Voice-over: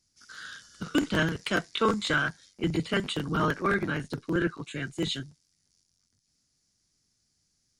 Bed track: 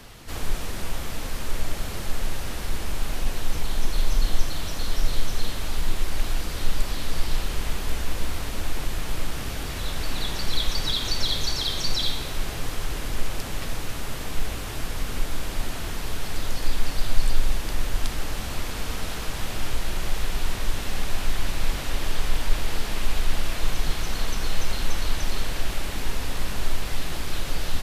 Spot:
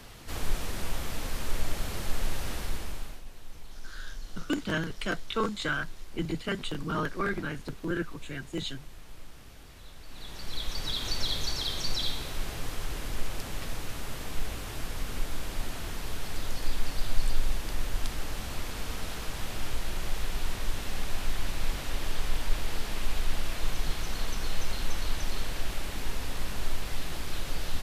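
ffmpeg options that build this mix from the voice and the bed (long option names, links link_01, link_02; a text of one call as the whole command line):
ffmpeg -i stem1.wav -i stem2.wav -filter_complex "[0:a]adelay=3550,volume=-4.5dB[link_01];[1:a]volume=11dB,afade=type=out:start_time=2.54:duration=0.68:silence=0.149624,afade=type=in:start_time=10.06:duration=1.05:silence=0.199526[link_02];[link_01][link_02]amix=inputs=2:normalize=0" out.wav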